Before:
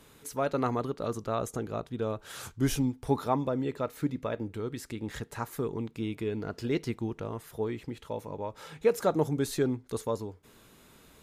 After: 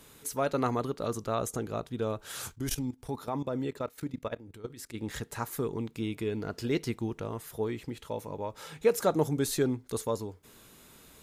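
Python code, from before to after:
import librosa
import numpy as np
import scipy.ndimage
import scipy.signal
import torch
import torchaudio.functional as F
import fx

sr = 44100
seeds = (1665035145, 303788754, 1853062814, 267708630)

y = fx.level_steps(x, sr, step_db=16, at=(2.53, 4.93), fade=0.02)
y = fx.high_shelf(y, sr, hz=4600.0, db=6.5)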